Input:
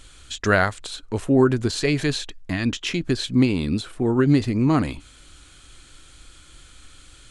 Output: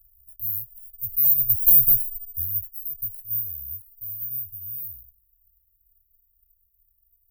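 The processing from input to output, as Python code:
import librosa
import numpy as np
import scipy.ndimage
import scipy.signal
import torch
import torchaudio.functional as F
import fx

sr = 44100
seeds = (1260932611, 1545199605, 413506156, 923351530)

y = fx.doppler_pass(x, sr, speed_mps=32, closest_m=5.1, pass_at_s=1.76)
y = (np.kron(y[::3], np.eye(3)[0]) * 3)[:len(y)]
y = scipy.signal.sosfilt(scipy.signal.cheby2(4, 40, [190.0, 7700.0], 'bandstop', fs=sr, output='sos'), y)
y = fx.cheby_harmonics(y, sr, harmonics=(5,), levels_db=(-19,), full_scale_db=-4.5)
y = y * librosa.db_to_amplitude(2.5)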